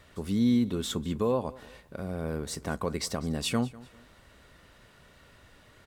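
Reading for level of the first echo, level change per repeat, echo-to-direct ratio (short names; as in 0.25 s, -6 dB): -20.5 dB, -10.0 dB, -20.0 dB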